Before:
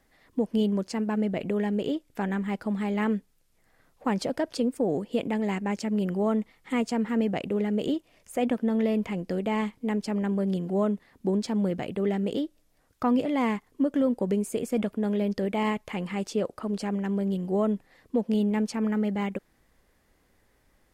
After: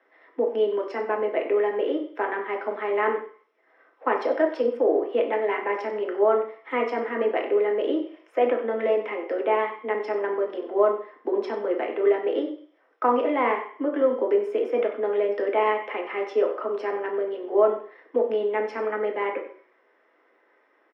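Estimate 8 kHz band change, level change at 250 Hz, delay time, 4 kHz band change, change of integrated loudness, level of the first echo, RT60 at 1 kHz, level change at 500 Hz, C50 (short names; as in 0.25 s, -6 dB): under -20 dB, -7.0 dB, 94 ms, -2.5 dB, +3.0 dB, -13.5 dB, 0.50 s, +8.0 dB, 7.5 dB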